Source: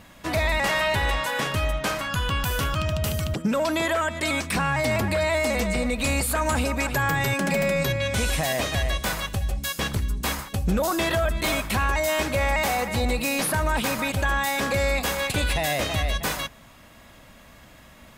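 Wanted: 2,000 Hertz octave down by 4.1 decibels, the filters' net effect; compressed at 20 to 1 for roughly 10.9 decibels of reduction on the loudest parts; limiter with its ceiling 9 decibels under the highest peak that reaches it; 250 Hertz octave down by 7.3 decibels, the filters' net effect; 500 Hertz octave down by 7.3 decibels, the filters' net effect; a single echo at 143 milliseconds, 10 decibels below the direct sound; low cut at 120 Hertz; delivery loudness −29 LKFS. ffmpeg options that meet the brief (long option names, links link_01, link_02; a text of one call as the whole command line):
ffmpeg -i in.wav -af "highpass=120,equalizer=frequency=250:width_type=o:gain=-7,equalizer=frequency=500:width_type=o:gain=-8,equalizer=frequency=2000:width_type=o:gain=-4.5,acompressor=threshold=-35dB:ratio=20,alimiter=level_in=6dB:limit=-24dB:level=0:latency=1,volume=-6dB,aecho=1:1:143:0.316,volume=10dB" out.wav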